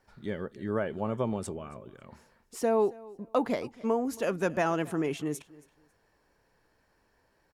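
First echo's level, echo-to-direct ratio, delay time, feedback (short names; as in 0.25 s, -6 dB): -21.5 dB, -21.5 dB, 0.274 s, 23%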